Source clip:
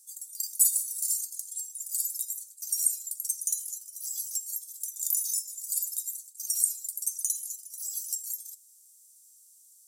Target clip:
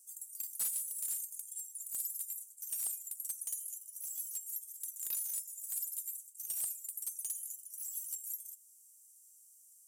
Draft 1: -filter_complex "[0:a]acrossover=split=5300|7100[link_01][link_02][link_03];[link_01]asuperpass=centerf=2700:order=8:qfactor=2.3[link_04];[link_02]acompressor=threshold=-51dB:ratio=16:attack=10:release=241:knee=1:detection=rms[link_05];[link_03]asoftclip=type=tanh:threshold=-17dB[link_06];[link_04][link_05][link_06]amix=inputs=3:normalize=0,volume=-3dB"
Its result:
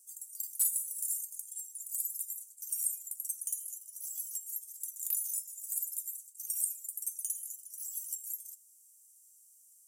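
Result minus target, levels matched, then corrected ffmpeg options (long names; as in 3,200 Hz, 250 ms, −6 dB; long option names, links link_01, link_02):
soft clipping: distortion −11 dB; downward compressor: peak gain reduction −6 dB
-filter_complex "[0:a]acrossover=split=5300|7100[link_01][link_02][link_03];[link_01]asuperpass=centerf=2700:order=8:qfactor=2.3[link_04];[link_02]acompressor=threshold=-57.5dB:ratio=16:attack=10:release=241:knee=1:detection=rms[link_05];[link_03]asoftclip=type=tanh:threshold=-28.5dB[link_06];[link_04][link_05][link_06]amix=inputs=3:normalize=0,volume=-3dB"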